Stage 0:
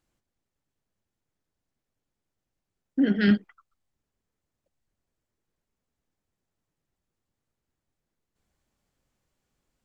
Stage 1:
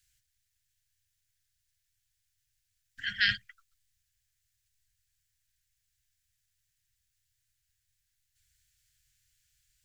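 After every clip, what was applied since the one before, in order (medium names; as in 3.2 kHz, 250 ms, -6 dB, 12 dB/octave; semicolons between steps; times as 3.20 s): Chebyshev band-stop 120–1600 Hz, order 4; treble shelf 3.3 kHz +11 dB; trim +2.5 dB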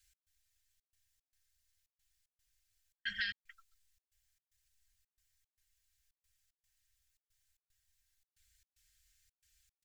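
comb 3.8 ms, depth 91%; compression 12:1, threshold -31 dBFS, peak gain reduction 13.5 dB; trance gate "x.xxxx.x" 113 bpm -60 dB; trim -3 dB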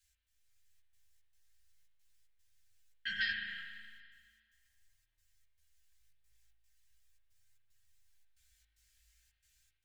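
spring tank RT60 1.9 s, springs 37 ms, chirp 60 ms, DRR 1 dB; level rider gain up to 4 dB; chorus voices 2, 0.39 Hz, delay 15 ms, depth 5 ms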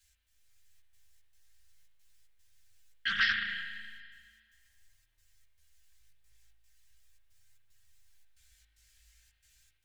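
loudspeaker Doppler distortion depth 0.24 ms; trim +7 dB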